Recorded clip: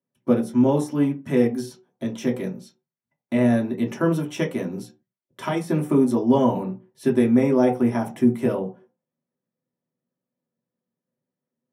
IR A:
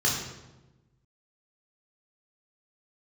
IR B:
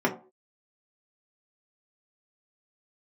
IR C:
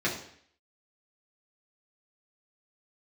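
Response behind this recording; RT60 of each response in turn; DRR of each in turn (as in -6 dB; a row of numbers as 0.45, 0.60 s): B; 1.1 s, not exponential, 0.60 s; -4.0, -2.5, -6.5 dB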